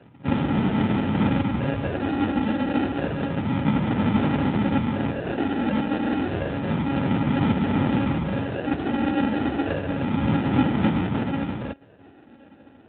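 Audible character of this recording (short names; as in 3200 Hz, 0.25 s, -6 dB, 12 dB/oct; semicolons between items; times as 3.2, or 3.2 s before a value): a buzz of ramps at a fixed pitch in blocks of 32 samples; phasing stages 12, 0.3 Hz, lowest notch 130–1100 Hz; aliases and images of a low sample rate 1100 Hz, jitter 0%; AMR-NB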